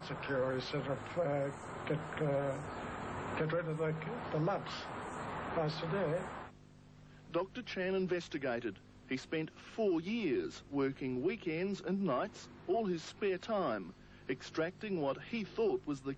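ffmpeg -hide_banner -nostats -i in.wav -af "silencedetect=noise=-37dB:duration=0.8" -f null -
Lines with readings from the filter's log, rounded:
silence_start: 6.42
silence_end: 7.34 | silence_duration: 0.92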